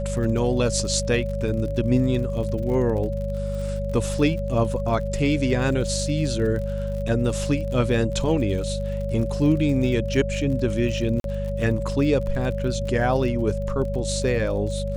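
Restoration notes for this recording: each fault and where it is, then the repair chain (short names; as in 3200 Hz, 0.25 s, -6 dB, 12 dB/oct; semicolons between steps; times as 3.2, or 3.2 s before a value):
crackle 52/s -32 dBFS
hum 50 Hz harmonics 4 -28 dBFS
tone 560 Hz -29 dBFS
11.2–11.24 gap 42 ms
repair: de-click; notch 560 Hz, Q 30; de-hum 50 Hz, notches 4; interpolate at 11.2, 42 ms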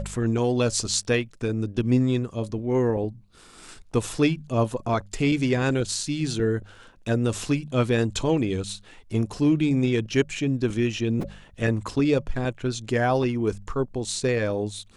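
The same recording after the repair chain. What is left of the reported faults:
none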